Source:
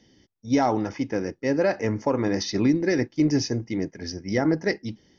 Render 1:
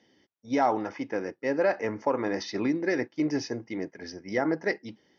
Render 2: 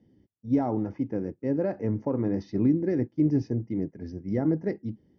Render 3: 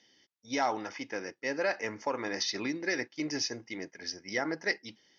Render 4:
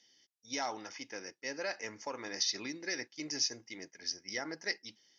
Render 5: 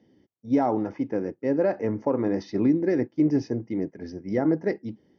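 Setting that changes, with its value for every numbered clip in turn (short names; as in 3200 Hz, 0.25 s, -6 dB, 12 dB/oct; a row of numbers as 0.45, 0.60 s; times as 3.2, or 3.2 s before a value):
band-pass, frequency: 1100, 140, 2900, 7300, 360 Hz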